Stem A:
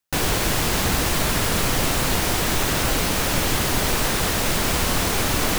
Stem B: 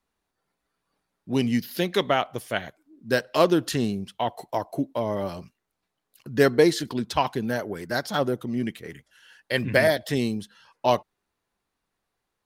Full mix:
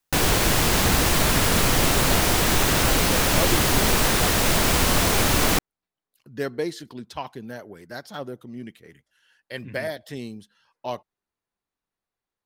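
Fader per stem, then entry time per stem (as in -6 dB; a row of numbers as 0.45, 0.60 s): +1.5, -9.5 dB; 0.00, 0.00 s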